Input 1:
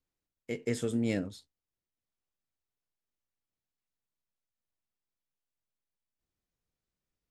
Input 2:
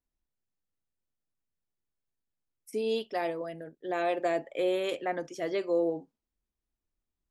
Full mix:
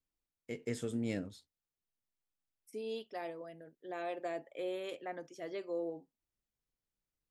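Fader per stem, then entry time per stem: -6.0 dB, -10.5 dB; 0.00 s, 0.00 s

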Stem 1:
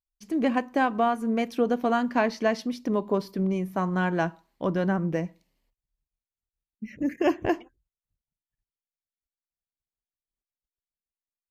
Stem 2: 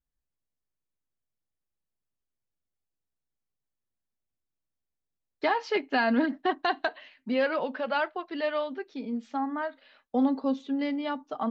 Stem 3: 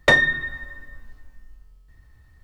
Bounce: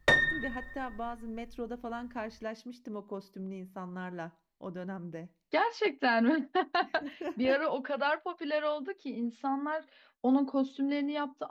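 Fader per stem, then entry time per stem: -14.5 dB, -2.0 dB, -8.5 dB; 0.00 s, 0.10 s, 0.00 s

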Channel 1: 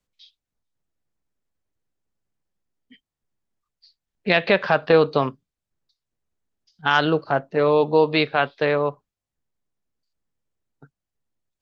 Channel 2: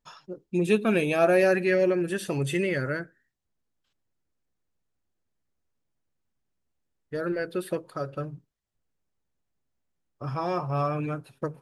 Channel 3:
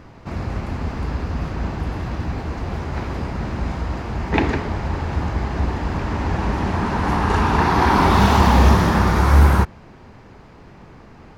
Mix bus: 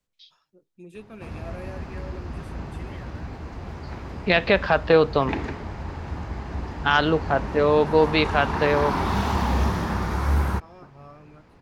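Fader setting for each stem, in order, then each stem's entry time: -1.0 dB, -19.5 dB, -9.5 dB; 0.00 s, 0.25 s, 0.95 s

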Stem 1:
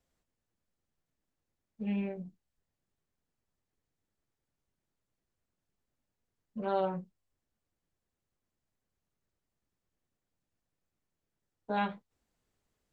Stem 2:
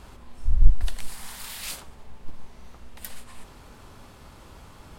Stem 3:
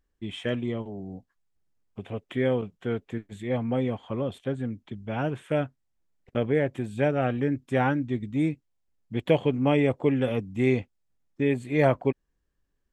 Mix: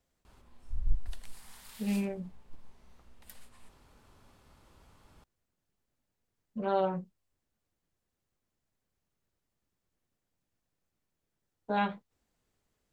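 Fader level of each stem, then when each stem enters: +2.0 dB, -13.5 dB, mute; 0.00 s, 0.25 s, mute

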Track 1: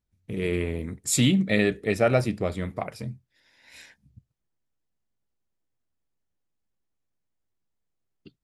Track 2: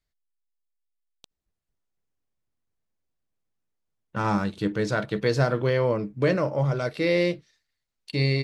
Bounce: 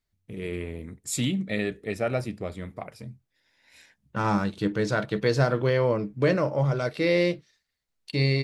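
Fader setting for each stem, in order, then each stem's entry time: -6.0 dB, 0.0 dB; 0.00 s, 0.00 s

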